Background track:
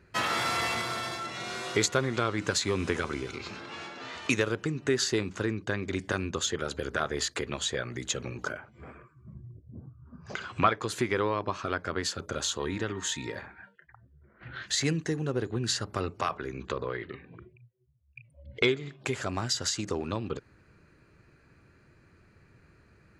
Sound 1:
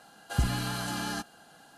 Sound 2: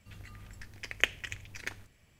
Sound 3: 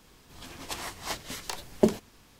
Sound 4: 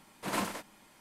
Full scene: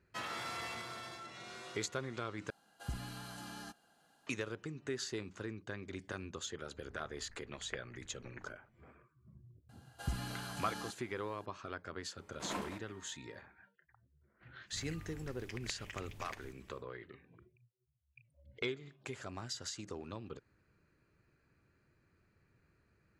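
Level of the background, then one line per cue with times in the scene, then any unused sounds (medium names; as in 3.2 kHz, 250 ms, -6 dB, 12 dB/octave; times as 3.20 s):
background track -13 dB
2.50 s: replace with 1 -14.5 dB
6.70 s: add 2 -12 dB + low-pass 1.9 kHz 24 dB/octave
9.69 s: add 1 -11 dB
12.17 s: add 4 -7 dB + treble shelf 4.2 kHz -10.5 dB
14.66 s: add 2 -1 dB, fades 0.10 s + compression 5:1, threshold -42 dBFS
not used: 3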